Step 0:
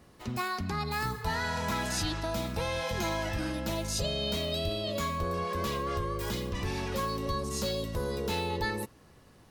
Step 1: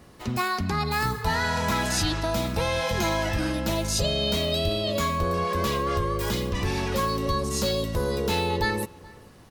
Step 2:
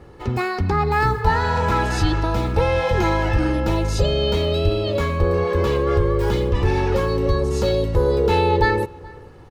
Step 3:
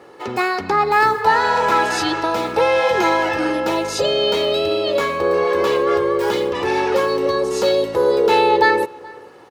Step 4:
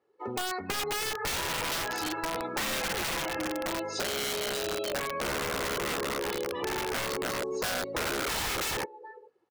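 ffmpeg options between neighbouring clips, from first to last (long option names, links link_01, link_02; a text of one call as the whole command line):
ffmpeg -i in.wav -filter_complex "[0:a]asplit=2[link_01][link_02];[link_02]adelay=425.7,volume=-23dB,highshelf=frequency=4000:gain=-9.58[link_03];[link_01][link_03]amix=inputs=2:normalize=0,volume=6.5dB" out.wav
ffmpeg -i in.wav -af "lowpass=frequency=1200:poles=1,aecho=1:1:2.3:0.57,volume=7dB" out.wav
ffmpeg -i in.wav -af "highpass=380,volume=5.5dB" out.wav
ffmpeg -i in.wav -af "afftdn=noise_reduction=25:noise_floor=-27,aeval=exprs='(mod(4.22*val(0)+1,2)-1)/4.22':channel_layout=same,acompressor=threshold=-22dB:ratio=6,volume=-7.5dB" out.wav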